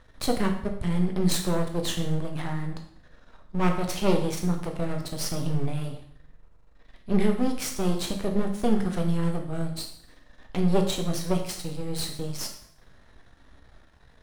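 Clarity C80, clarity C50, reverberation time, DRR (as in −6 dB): 11.0 dB, 8.0 dB, 0.70 s, 2.5 dB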